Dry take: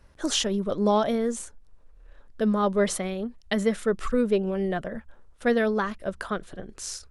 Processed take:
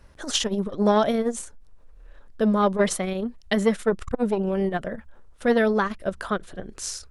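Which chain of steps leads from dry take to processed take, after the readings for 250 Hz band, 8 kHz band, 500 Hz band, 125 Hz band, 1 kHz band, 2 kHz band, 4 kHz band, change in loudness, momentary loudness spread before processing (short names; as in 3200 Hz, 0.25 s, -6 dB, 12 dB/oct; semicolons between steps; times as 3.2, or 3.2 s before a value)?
+2.0 dB, +1.5 dB, +2.0 dB, +2.5 dB, +3.0 dB, +2.5 dB, +1.5 dB, +2.0 dB, 12 LU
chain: core saturation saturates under 330 Hz; gain +4 dB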